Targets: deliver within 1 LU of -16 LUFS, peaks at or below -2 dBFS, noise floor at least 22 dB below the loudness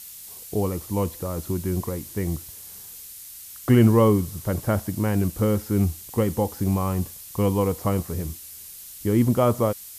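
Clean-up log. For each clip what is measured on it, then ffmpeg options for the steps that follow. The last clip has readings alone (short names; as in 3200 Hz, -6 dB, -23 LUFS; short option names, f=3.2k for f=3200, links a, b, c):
noise floor -42 dBFS; noise floor target -46 dBFS; loudness -24.0 LUFS; peak -7.0 dBFS; loudness target -16.0 LUFS
-> -af "afftdn=nr=6:nf=-42"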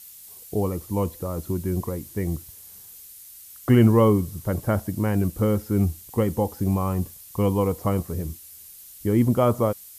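noise floor -45 dBFS; noise floor target -46 dBFS
-> -af "afftdn=nr=6:nf=-45"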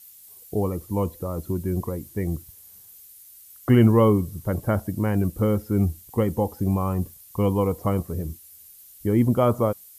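noise floor -49 dBFS; loudness -24.0 LUFS; peak -7.0 dBFS; loudness target -16.0 LUFS
-> -af "volume=8dB,alimiter=limit=-2dB:level=0:latency=1"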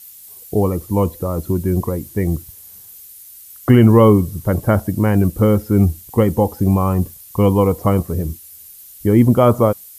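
loudness -16.5 LUFS; peak -2.0 dBFS; noise floor -41 dBFS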